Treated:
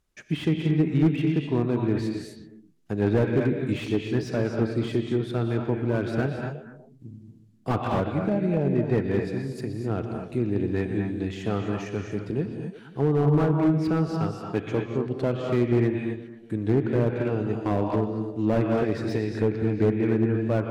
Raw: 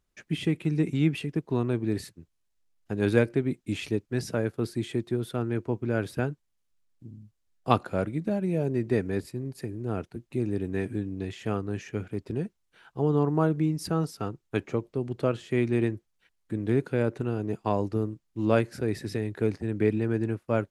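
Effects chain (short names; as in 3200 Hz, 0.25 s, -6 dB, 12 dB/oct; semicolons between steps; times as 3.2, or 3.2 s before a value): on a send: delay with a stepping band-pass 0.12 s, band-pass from 3600 Hz, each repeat -1.4 oct, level -8.5 dB; on the sum: non-linear reverb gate 0.28 s rising, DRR 4 dB; treble ducked by the level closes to 2200 Hz, closed at -20 dBFS; slew limiter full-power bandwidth 40 Hz; gain +2.5 dB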